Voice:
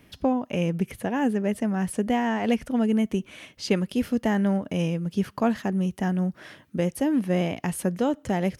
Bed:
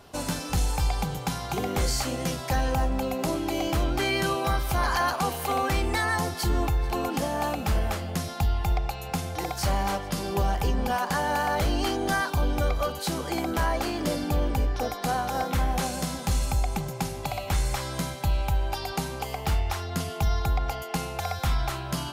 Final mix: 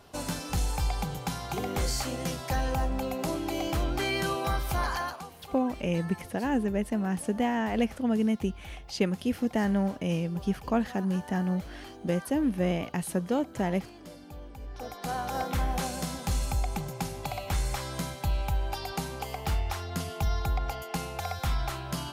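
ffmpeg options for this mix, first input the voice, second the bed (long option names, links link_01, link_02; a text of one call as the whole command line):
ffmpeg -i stem1.wav -i stem2.wav -filter_complex "[0:a]adelay=5300,volume=-3.5dB[link_01];[1:a]volume=12dB,afade=type=out:start_time=4.79:duration=0.49:silence=0.16788,afade=type=in:start_time=14.59:duration=0.75:silence=0.16788[link_02];[link_01][link_02]amix=inputs=2:normalize=0" out.wav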